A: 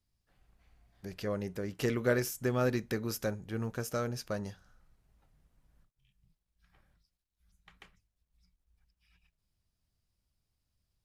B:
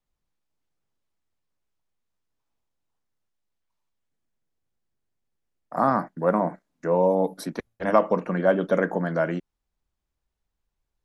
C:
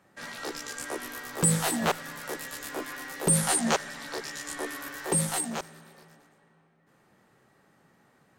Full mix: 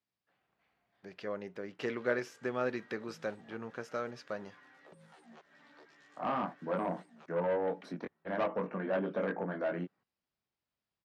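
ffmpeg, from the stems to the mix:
ffmpeg -i stem1.wav -i stem2.wav -i stem3.wav -filter_complex "[0:a]highpass=frequency=430:poles=1,volume=-0.5dB[link_01];[1:a]flanger=delay=20:depth=3.4:speed=0.35,asoftclip=type=tanh:threshold=-21.5dB,adelay=450,volume=-5dB[link_02];[2:a]alimiter=limit=-20dB:level=0:latency=1:release=168,acompressor=threshold=-43dB:ratio=2,flanger=delay=0.4:depth=3.1:regen=65:speed=0.37:shape=triangular,adelay=1650,volume=-12dB[link_03];[link_01][link_02][link_03]amix=inputs=3:normalize=0,highpass=130,lowpass=3100" out.wav

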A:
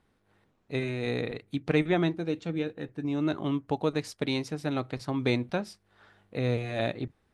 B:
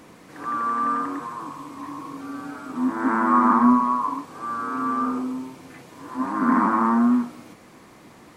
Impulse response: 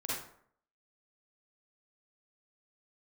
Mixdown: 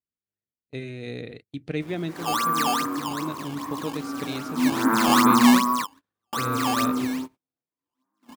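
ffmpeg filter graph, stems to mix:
-filter_complex "[0:a]equalizer=frequency=1000:width_type=o:width=0.92:gain=-12,volume=-3dB,asplit=2[link_01][link_02];[1:a]adynamicequalizer=threshold=0.02:dfrequency=800:dqfactor=1.5:tfrequency=800:tqfactor=1.5:attack=5:release=100:ratio=0.375:range=3:mode=cutabove:tftype=bell,acrusher=samples=13:mix=1:aa=0.000001:lfo=1:lforange=20.8:lforate=2.5,adelay=1800,volume=1.5dB[link_03];[link_02]apad=whole_len=448078[link_04];[link_03][link_04]sidechaingate=range=-27dB:threshold=-60dB:ratio=16:detection=peak[link_05];[link_01][link_05]amix=inputs=2:normalize=0,highpass=41,agate=range=-27dB:threshold=-44dB:ratio=16:detection=peak"

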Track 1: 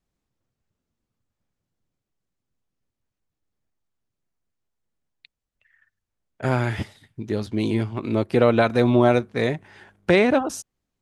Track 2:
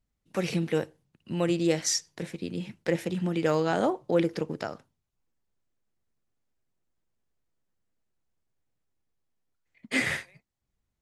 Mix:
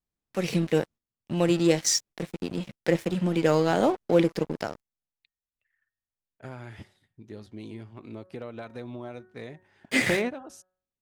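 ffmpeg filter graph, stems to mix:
ffmpeg -i stem1.wav -i stem2.wav -filter_complex "[0:a]bandreject=frequency=184.7:width_type=h:width=4,bandreject=frequency=369.4:width_type=h:width=4,bandreject=frequency=554.1:width_type=h:width=4,bandreject=frequency=738.8:width_type=h:width=4,bandreject=frequency=923.5:width_type=h:width=4,bandreject=frequency=1108.2:width_type=h:width=4,bandreject=frequency=1292.9:width_type=h:width=4,bandreject=frequency=1477.6:width_type=h:width=4,bandreject=frequency=1662.3:width_type=h:width=4,bandreject=frequency=1847:width_type=h:width=4,acompressor=threshold=-20dB:ratio=4,volume=12dB,asoftclip=hard,volume=-12dB,volume=-11dB[link_01];[1:a]equalizer=frequency=1300:width=1.4:gain=-3,aeval=exprs='sgn(val(0))*max(abs(val(0))-0.0075,0)':channel_layout=same,volume=-3dB,asplit=2[link_02][link_03];[link_03]apad=whole_len=485692[link_04];[link_01][link_04]sidechaingate=range=-12dB:threshold=-51dB:ratio=16:detection=peak[link_05];[link_05][link_02]amix=inputs=2:normalize=0,dynaudnorm=framelen=250:gausssize=3:maxgain=7.5dB" out.wav

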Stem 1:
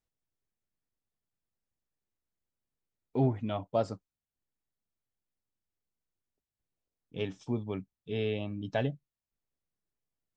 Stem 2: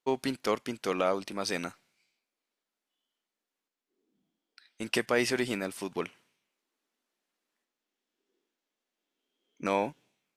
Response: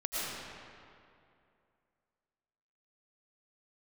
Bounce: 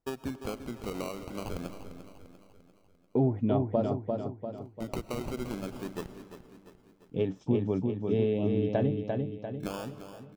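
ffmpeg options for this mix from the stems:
-filter_complex "[0:a]equalizer=frequency=460:width=0.39:gain=11,acompressor=threshold=-22dB:ratio=4,volume=-6dB,asplit=2[link_01][link_02];[link_02]volume=-4dB[link_03];[1:a]acrusher=samples=20:mix=1:aa=0.000001:lfo=1:lforange=12:lforate=0.25,acompressor=threshold=-28dB:ratio=6,volume=-7.5dB,asplit=3[link_04][link_05][link_06];[link_05]volume=-19dB[link_07];[link_06]volume=-10.5dB[link_08];[2:a]atrim=start_sample=2205[link_09];[link_07][link_09]afir=irnorm=-1:irlink=0[link_10];[link_03][link_08]amix=inputs=2:normalize=0,aecho=0:1:346|692|1038|1384|1730|2076|2422:1|0.49|0.24|0.118|0.0576|0.0282|0.0138[link_11];[link_01][link_04][link_10][link_11]amix=inputs=4:normalize=0,lowshelf=frequency=290:gain=10.5"

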